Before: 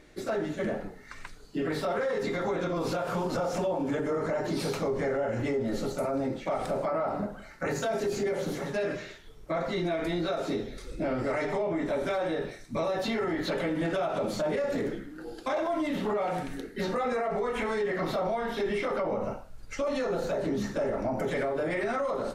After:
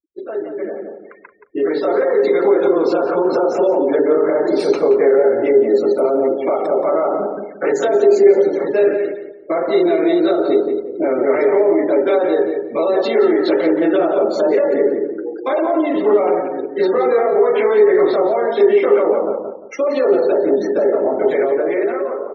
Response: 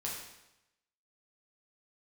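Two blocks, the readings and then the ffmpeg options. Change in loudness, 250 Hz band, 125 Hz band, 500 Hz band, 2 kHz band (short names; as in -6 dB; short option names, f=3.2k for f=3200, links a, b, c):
+15.0 dB, +13.0 dB, n/a, +16.5 dB, +7.5 dB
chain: -filter_complex "[0:a]afftfilt=real='re*gte(hypot(re,im),0.0141)':imag='im*gte(hypot(re,im),0.0141)':win_size=1024:overlap=0.75,dynaudnorm=f=580:g=5:m=10dB,highpass=f=380:t=q:w=3.6,asplit=2[a][b];[b]adelay=175,lowpass=f=1.2k:p=1,volume=-4.5dB,asplit=2[c][d];[d]adelay=175,lowpass=f=1.2k:p=1,volume=0.32,asplit=2[e][f];[f]adelay=175,lowpass=f=1.2k:p=1,volume=0.32,asplit=2[g][h];[h]adelay=175,lowpass=f=1.2k:p=1,volume=0.32[i];[c][e][g][i]amix=inputs=4:normalize=0[j];[a][j]amix=inputs=2:normalize=0,volume=-2dB"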